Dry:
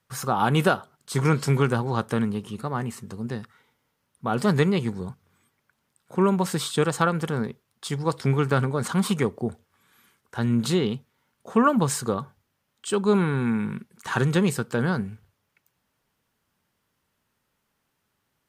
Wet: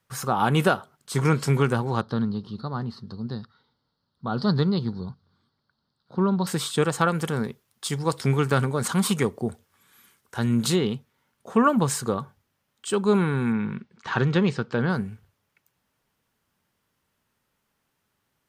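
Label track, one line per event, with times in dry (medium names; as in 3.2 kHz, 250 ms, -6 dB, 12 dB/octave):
2.010000	6.470000	FFT filter 210 Hz 0 dB, 440 Hz -5 dB, 1.4 kHz -3 dB, 2.4 kHz -19 dB, 4.4 kHz +9 dB, 7.2 kHz -26 dB
7.080000	10.760000	treble shelf 4 kHz +6.5 dB
13.520000	14.900000	low-pass 5.2 kHz 24 dB/octave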